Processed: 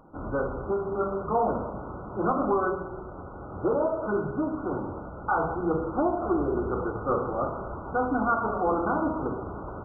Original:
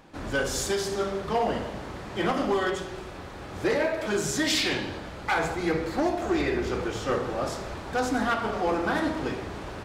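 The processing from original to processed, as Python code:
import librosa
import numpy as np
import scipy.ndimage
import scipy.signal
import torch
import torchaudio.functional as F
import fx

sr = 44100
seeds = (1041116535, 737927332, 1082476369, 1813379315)

y = fx.dynamic_eq(x, sr, hz=1100.0, q=2.3, threshold_db=-44.0, ratio=4.0, max_db=4)
y = fx.brickwall_lowpass(y, sr, high_hz=1500.0)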